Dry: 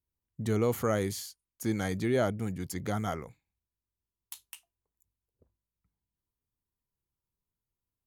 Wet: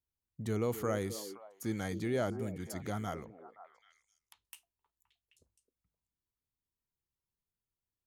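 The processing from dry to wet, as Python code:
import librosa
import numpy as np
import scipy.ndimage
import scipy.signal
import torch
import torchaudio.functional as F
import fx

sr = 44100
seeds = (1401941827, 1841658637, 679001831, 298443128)

y = fx.echo_stepped(x, sr, ms=261, hz=360.0, octaves=1.4, feedback_pct=70, wet_db=-7.5)
y = fx.spec_box(y, sr, start_s=1.38, length_s=0.23, low_hz=1100.0, high_hz=11000.0, gain_db=-9)
y = fx.env_lowpass_down(y, sr, base_hz=1700.0, full_db=-45.5, at=(3.24, 4.45))
y = F.gain(torch.from_numpy(y), -5.5).numpy()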